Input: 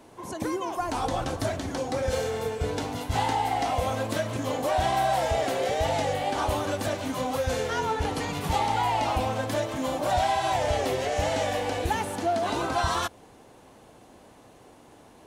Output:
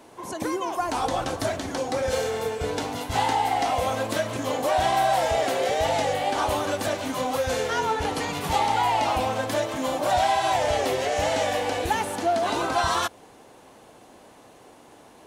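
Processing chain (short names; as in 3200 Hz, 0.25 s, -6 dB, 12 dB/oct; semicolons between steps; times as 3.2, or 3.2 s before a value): low shelf 190 Hz -8.5 dB; gain +3.5 dB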